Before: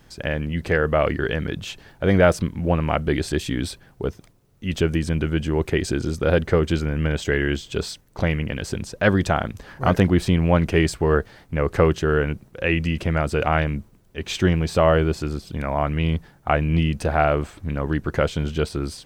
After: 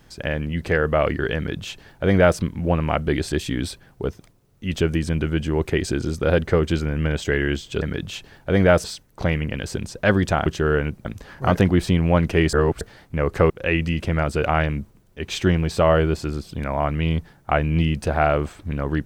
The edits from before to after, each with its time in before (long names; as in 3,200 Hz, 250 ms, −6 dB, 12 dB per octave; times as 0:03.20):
0:01.36–0:02.38: duplicate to 0:07.82
0:10.92–0:11.20: reverse
0:11.89–0:12.48: move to 0:09.44